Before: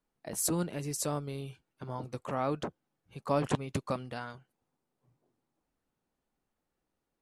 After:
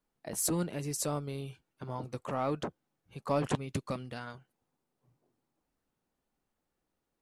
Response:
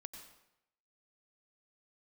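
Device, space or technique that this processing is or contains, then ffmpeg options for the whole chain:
parallel distortion: -filter_complex "[0:a]asplit=2[a][b];[b]asoftclip=type=hard:threshold=-28dB,volume=-7dB[c];[a][c]amix=inputs=2:normalize=0,asettb=1/sr,asplit=3[d][e][f];[d]atrim=end=3.584[g];[e]atrim=start=3.58:end=4.27,asetpts=PTS-STARTPTS,afade=t=in:d=0.004:c=qsin,afade=t=out:st=0.686:d=0.004:c=qsin,equalizer=f=840:t=o:w=1.5:g=-5[h];[f]atrim=start=4.266[i];[g][h]acrossfade=d=0.004:c1=hsin:c2=qsin[j];[j][i]acrossfade=d=0.004:c1=qsin:c2=hsin,volume=-3dB"

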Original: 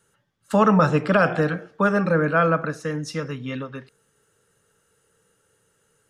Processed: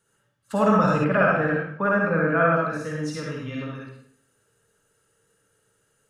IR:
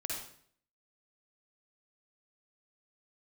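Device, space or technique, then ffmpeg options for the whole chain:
bathroom: -filter_complex "[1:a]atrim=start_sample=2205[a];[0:a][a]afir=irnorm=-1:irlink=0,asettb=1/sr,asplit=3[b][c][d];[b]atrim=end=1.044[e];[c]atrim=start=1.04:end=2.56,asetpts=PTS-STARTPTS,afade=t=in:d=0.004:c=qsin,afade=t=out:st=1.516:d=0.004:c=qsin,highshelf=f=3.1k:t=q:w=1.5:g=-11.5[f];[d]atrim=start=2.556[g];[e][f]acrossfade=d=0.004:c1=hsin:c2=qsin[h];[h][g]acrossfade=d=0.004:c1=qsin:c2=hsin,volume=-3.5dB"

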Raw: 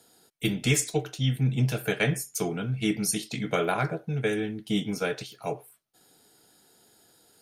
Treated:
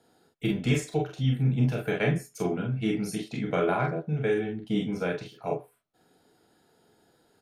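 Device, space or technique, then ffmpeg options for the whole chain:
through cloth: -af "highshelf=f=3.7k:g=-17,aecho=1:1:33|45:0.501|0.631,volume=-1dB"

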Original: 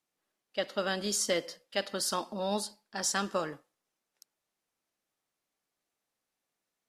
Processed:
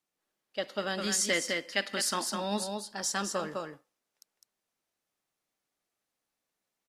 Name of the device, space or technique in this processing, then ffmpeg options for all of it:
ducked delay: -filter_complex "[0:a]asplit=3[a][b][c];[b]adelay=206,volume=-3.5dB[d];[c]apad=whole_len=312650[e];[d][e]sidechaincompress=threshold=-36dB:ratio=8:attack=46:release=110[f];[a][f]amix=inputs=2:normalize=0,asettb=1/sr,asplit=3[g][h][i];[g]atrim=end=0.984[j];[h]atrim=start=0.98:end=2.64,asetpts=PTS-STARTPTS,afade=t=in:d=0.004:c=qsin,afade=t=out:st=1.656:d=0.004:c=qsin,equalizer=f=125:t=o:w=1:g=-3,equalizer=f=250:t=o:w=1:g=5,equalizer=f=500:t=o:w=1:g=-3,equalizer=f=2k:t=o:w=1:g=9,equalizer=f=8k:t=o:w=1:g=4[k];[i]atrim=start=2.636[l];[j][k]acrossfade=d=0.004:c1=hsin:c2=qsin[m];[m][l]acrossfade=d=0.004:c1=qsin:c2=hsin,volume=-1.5dB"

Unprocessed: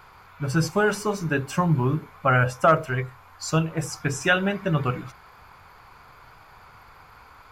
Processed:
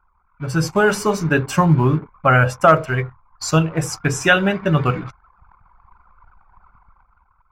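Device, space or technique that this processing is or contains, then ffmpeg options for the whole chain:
voice memo with heavy noise removal: -af "anlmdn=0.251,dynaudnorm=f=110:g=13:m=9.5dB"

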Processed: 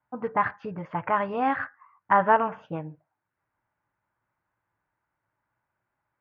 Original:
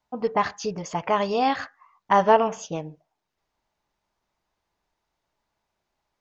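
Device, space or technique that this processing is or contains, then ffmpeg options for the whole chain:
bass cabinet: -af "highpass=66,equalizer=f=68:t=q:w=4:g=-7,equalizer=f=110:t=q:w=4:g=9,equalizer=f=210:t=q:w=4:g=-5,equalizer=f=420:t=q:w=4:g=-8,equalizer=f=690:t=q:w=4:g=-6,equalizer=f=1.5k:t=q:w=4:g=6,lowpass=f=2.1k:w=0.5412,lowpass=f=2.1k:w=1.3066"

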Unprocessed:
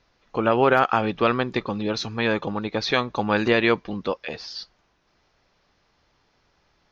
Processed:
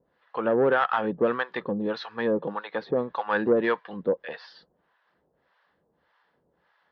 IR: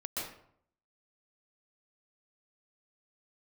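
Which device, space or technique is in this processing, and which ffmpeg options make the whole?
guitar amplifier with harmonic tremolo: -filter_complex "[0:a]acrossover=split=670[a][b];[a]aeval=exprs='val(0)*(1-1/2+1/2*cos(2*PI*1.7*n/s))':c=same[c];[b]aeval=exprs='val(0)*(1-1/2-1/2*cos(2*PI*1.7*n/s))':c=same[d];[c][d]amix=inputs=2:normalize=0,asoftclip=type=tanh:threshold=-17dB,highpass=100,equalizer=f=110:t=q:w=4:g=-9,equalizer=f=170:t=q:w=4:g=4,equalizer=f=500:t=q:w=4:g=7,equalizer=f=970:t=q:w=4:g=4,equalizer=f=1.7k:t=q:w=4:g=8,equalizer=f=2.4k:t=q:w=4:g=-8,lowpass=f=3.4k:w=0.5412,lowpass=f=3.4k:w=1.3066,asettb=1/sr,asplit=3[e][f][g];[e]atrim=end=2.384[h];[f]atrim=start=2.38:end=2.91,asetpts=PTS-STARTPTS,afade=t=in:d=0.004:c=qsin,afade=t=out:st=0.526:d=0.004:c=qsin,highpass=150[i];[g]atrim=start=2.906[j];[h][i]acrossfade=d=0.004:c1=hsin:c2=qsin[k];[k][j]acrossfade=d=0.004:c1=qsin:c2=hsin"

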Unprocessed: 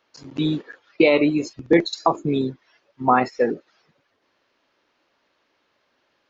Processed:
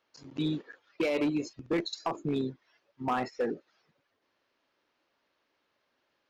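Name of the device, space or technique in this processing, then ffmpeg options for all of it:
limiter into clipper: -af "alimiter=limit=-10dB:level=0:latency=1:release=39,asoftclip=type=hard:threshold=-15dB,volume=-8.5dB"

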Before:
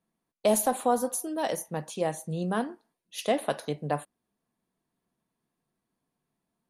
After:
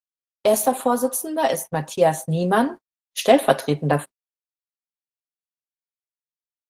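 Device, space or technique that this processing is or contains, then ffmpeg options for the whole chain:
video call: -af "highpass=56,highpass=f=110:p=1,aecho=1:1:7.5:0.58,dynaudnorm=f=360:g=9:m=6dB,agate=range=-58dB:threshold=-35dB:ratio=16:detection=peak,volume=5dB" -ar 48000 -c:a libopus -b:a 16k

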